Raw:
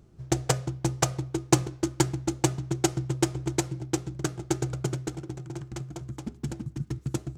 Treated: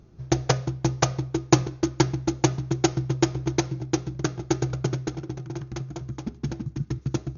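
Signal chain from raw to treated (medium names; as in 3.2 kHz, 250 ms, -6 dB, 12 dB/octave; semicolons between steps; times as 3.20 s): brick-wall FIR low-pass 6.8 kHz; band-stop 3 kHz, Q 28; trim +3.5 dB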